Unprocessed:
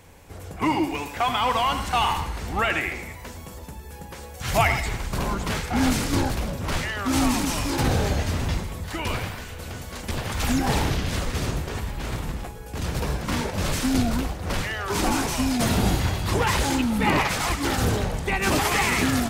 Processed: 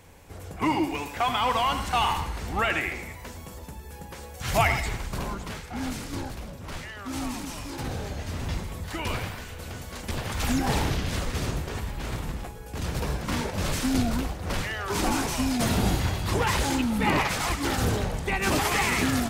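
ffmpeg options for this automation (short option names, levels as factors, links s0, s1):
-af "volume=2,afade=t=out:st=4.85:d=0.73:silence=0.375837,afade=t=in:st=8.15:d=0.6:silence=0.398107"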